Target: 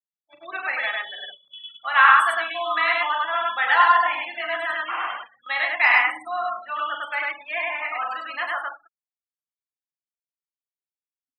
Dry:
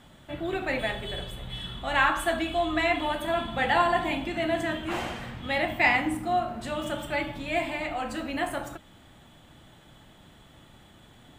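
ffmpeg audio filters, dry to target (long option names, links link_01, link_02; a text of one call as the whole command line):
ffmpeg -i in.wav -filter_complex "[0:a]afftfilt=real='re*gte(hypot(re,im),0.0282)':imag='im*gte(hypot(re,im),0.0282)':win_size=1024:overlap=0.75,agate=range=-15dB:threshold=-35dB:ratio=16:detection=peak,highpass=frequency=1200:width_type=q:width=3.4,asplit=2[link_01][link_02];[link_02]aecho=0:1:40.82|102:0.355|0.891[link_03];[link_01][link_03]amix=inputs=2:normalize=0,volume=1dB" out.wav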